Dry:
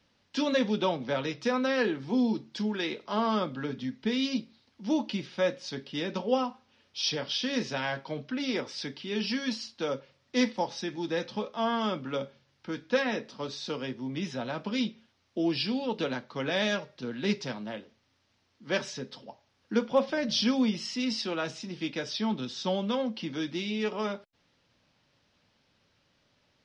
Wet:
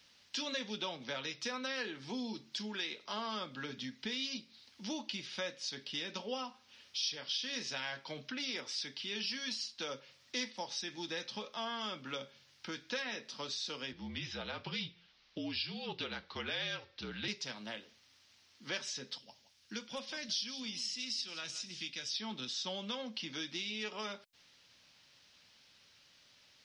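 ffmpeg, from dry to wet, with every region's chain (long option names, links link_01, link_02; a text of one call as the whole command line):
ffmpeg -i in.wav -filter_complex "[0:a]asettb=1/sr,asplit=3[link_01][link_02][link_03];[link_01]atrim=end=13.924[link_04];[link_02]atrim=start=13.92:end=17.28,asetpts=PTS-STARTPTS,afade=type=in:duration=0.004:curve=qsin,afade=type=out:start_time=3.356:duration=0.004:curve=qsin,lowpass=frequency=4900:width=0.5412,lowpass=frequency=4900:width=1.3066,afreqshift=-50[link_05];[link_03]atrim=start=17.276[link_06];[link_04][link_05]acrossfade=duration=0.004:curve1=hsin:curve2=qsin[link_07];[link_07][link_06]acrossfade=duration=0.004:curve1=qsin:curve2=hsin,asettb=1/sr,asplit=3[link_08][link_09][link_10];[link_08]atrim=end=19.184[link_11];[link_09]atrim=start=19.18:end=22.16,asetpts=PTS-STARTPTS,afade=type=in:duration=0.004:curve=qsin,afade=type=out:start_time=2.976:duration=0.004:curve=qsin,equalizer=frequency=620:width=0.32:gain=-11,aecho=1:1:170:0.158,atrim=end_sample=131418[link_12];[link_10]atrim=start=22.156[link_13];[link_11][link_12]acrossfade=duration=0.004:curve1=hsin:curve2=qsin[link_14];[link_14][link_13]acrossfade=duration=0.004:curve1=qsin:curve2=hsin,tiltshelf=frequency=1500:gain=-8.5,acompressor=threshold=-45dB:ratio=2.5,volume=3dB" out.wav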